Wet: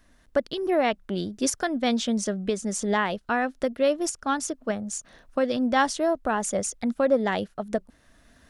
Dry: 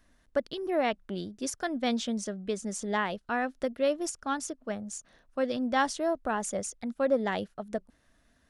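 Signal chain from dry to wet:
camcorder AGC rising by 8.2 dB per second
level +4.5 dB

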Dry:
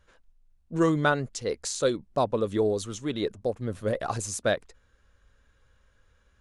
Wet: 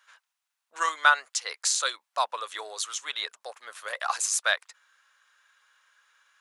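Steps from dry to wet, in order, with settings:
high-pass filter 980 Hz 24 dB per octave
level +7.5 dB

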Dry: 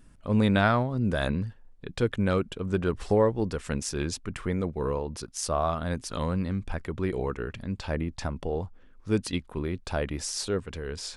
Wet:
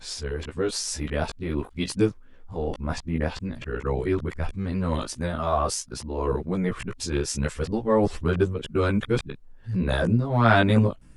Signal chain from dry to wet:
played backwards from end to start
multi-voice chorus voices 2, 0.24 Hz, delay 15 ms, depth 2.4 ms
level +6 dB

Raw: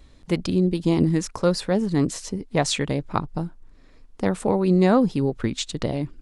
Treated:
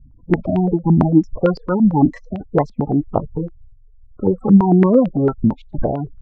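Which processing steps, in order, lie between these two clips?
each half-wave held at its own peak
gate on every frequency bin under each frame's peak −15 dB strong
low-pass on a step sequencer 8.9 Hz 210–2,800 Hz
level −1 dB

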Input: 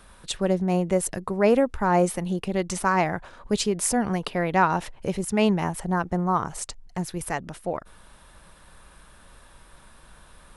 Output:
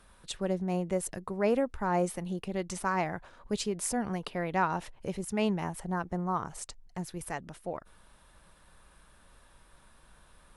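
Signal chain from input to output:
level −8 dB
Ogg Vorbis 128 kbit/s 44,100 Hz

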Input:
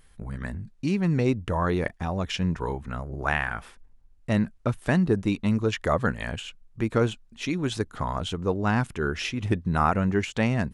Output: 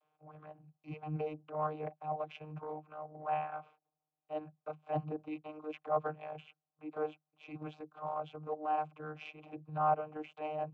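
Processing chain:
formant filter a
channel vocoder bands 32, saw 153 Hz
transient designer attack −8 dB, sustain −3 dB
level +5 dB

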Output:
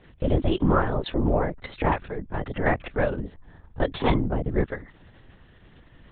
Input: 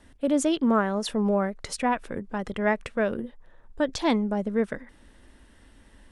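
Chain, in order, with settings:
linear-prediction vocoder at 8 kHz whisper
level +1.5 dB

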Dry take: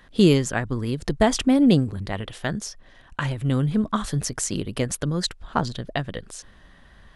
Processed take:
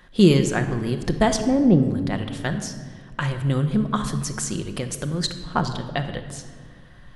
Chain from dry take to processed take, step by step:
0:01.38–0:01.83: low-pass filter 1,100 Hz 12 dB per octave
0:03.99–0:05.20: downward compressor, threshold −24 dBFS, peak gain reduction 6.5 dB
rectangular room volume 2,100 cubic metres, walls mixed, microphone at 0.94 metres

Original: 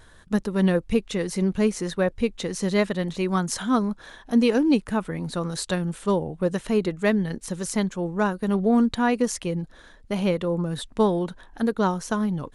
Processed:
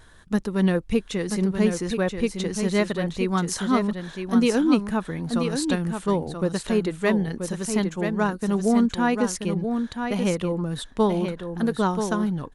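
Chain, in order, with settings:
parametric band 550 Hz −3 dB 0.4 octaves
single-tap delay 982 ms −6.5 dB

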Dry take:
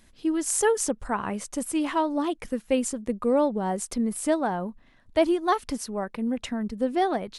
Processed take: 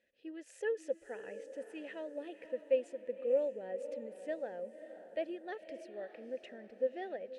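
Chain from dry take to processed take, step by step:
formant filter e
feedback delay with all-pass diffusion 558 ms, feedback 45%, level −11.5 dB
level −3.5 dB

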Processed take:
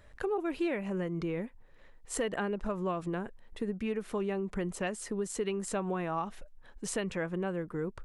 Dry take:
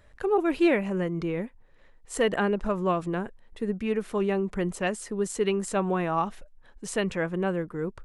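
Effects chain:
downward compressor 3 to 1, threshold −32 dBFS, peak gain reduction 11 dB

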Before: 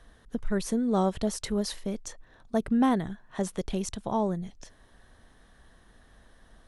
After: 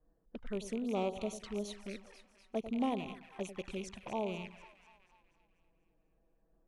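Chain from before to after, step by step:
loose part that buzzes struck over −40 dBFS, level −27 dBFS
low-pass that shuts in the quiet parts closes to 380 Hz, open at −25.5 dBFS
bass and treble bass −9 dB, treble −3 dB
echo with a time of its own for lows and highs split 900 Hz, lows 97 ms, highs 244 ms, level −11.5 dB
flanger swept by the level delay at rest 6.7 ms, full sweep at −29 dBFS
highs frequency-modulated by the lows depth 0.12 ms
level −6 dB

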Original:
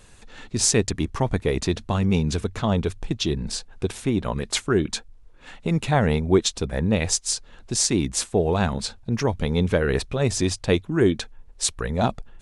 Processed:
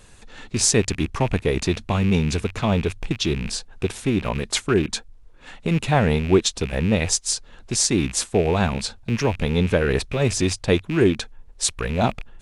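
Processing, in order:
loose part that buzzes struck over −35 dBFS, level −24 dBFS
level +1.5 dB

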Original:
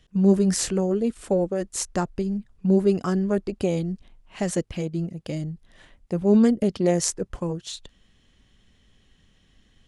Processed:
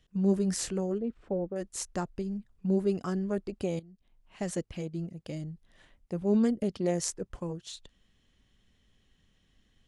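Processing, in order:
0:00.98–0:01.56: head-to-tape spacing loss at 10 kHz 37 dB
0:03.79–0:04.41: downward compressor 6 to 1, threshold −44 dBFS, peak gain reduction 17.5 dB
level −8 dB

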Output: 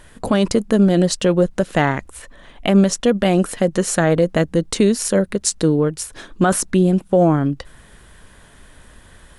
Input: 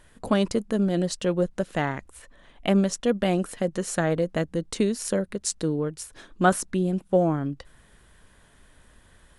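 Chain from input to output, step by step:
boost into a limiter +14.5 dB
level −4.5 dB

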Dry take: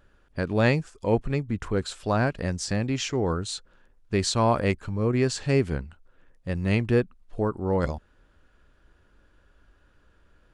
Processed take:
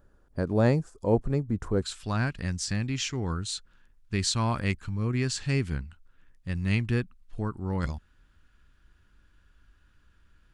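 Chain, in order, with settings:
parametric band 2,700 Hz −13.5 dB 1.6 octaves, from 0:01.82 540 Hz

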